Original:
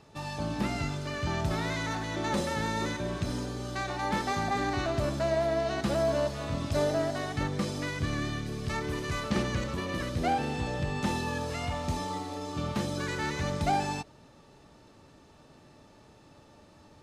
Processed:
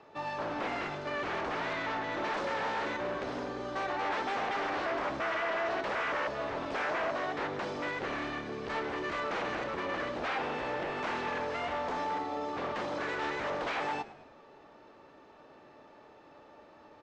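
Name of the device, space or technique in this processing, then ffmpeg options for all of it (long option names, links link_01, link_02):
synthesiser wavefolder: -filter_complex "[0:a]aeval=exprs='0.0316*(abs(mod(val(0)/0.0316+3,4)-2)-1)':channel_layout=same,lowpass=frequency=6700:width=0.5412,lowpass=frequency=6700:width=1.3066,asettb=1/sr,asplit=3[link_01][link_02][link_03];[link_01]atrim=end=1.734[link_04];[link_02]atrim=start=1.73:end=2.13,asetpts=PTS-STARTPTS,afade=type=in:duration=0.004:curve=qsin,afade=type=out:start_time=0.396:duration=0.004:curve=qsin,lowpass=6700[link_05];[link_03]atrim=start=2.126[link_06];[link_04][link_05]acrossfade=duration=0.004:curve1=hsin:curve2=qsin[link_07];[link_07][link_06]acrossfade=duration=0.004:curve1=qsin:curve2=hsin,acrossover=split=300 2700:gain=0.126 1 0.178[link_08][link_09][link_10];[link_08][link_09][link_10]amix=inputs=3:normalize=0,asplit=5[link_11][link_12][link_13][link_14][link_15];[link_12]adelay=107,afreqshift=-72,volume=-17dB[link_16];[link_13]adelay=214,afreqshift=-144,volume=-23.4dB[link_17];[link_14]adelay=321,afreqshift=-216,volume=-29.8dB[link_18];[link_15]adelay=428,afreqshift=-288,volume=-36.1dB[link_19];[link_11][link_16][link_17][link_18][link_19]amix=inputs=5:normalize=0,volume=4dB"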